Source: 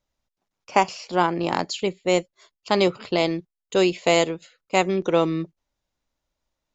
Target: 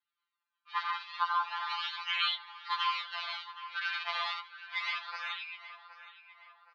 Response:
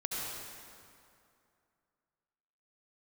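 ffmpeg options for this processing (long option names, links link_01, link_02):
-filter_complex "[1:a]atrim=start_sample=2205,afade=type=out:start_time=0.24:duration=0.01,atrim=end_sample=11025[link_01];[0:a][link_01]afir=irnorm=-1:irlink=0,acrossover=split=1600[link_02][link_03];[link_03]acrusher=samples=36:mix=1:aa=0.000001:lfo=1:lforange=57.6:lforate=0.32[link_04];[link_02][link_04]amix=inputs=2:normalize=0,asuperpass=centerf=2200:order=12:qfactor=0.64,asplit=2[link_05][link_06];[link_06]adelay=768,lowpass=frequency=2300:poles=1,volume=-15dB,asplit=2[link_07][link_08];[link_08]adelay=768,lowpass=frequency=2300:poles=1,volume=0.47,asplit=2[link_09][link_10];[link_10]adelay=768,lowpass=frequency=2300:poles=1,volume=0.47,asplit=2[link_11][link_12];[link_12]adelay=768,lowpass=frequency=2300:poles=1,volume=0.47[link_13];[link_05][link_07][link_09][link_11][link_13]amix=inputs=5:normalize=0,asplit=2[link_14][link_15];[link_15]acompressor=threshold=-45dB:ratio=6,volume=-0.5dB[link_16];[link_14][link_16]amix=inputs=2:normalize=0,aexciter=amount=2.1:drive=5.7:freq=2900,afftfilt=real='re*2.83*eq(mod(b,8),0)':imag='im*2.83*eq(mod(b,8),0)':win_size=2048:overlap=0.75"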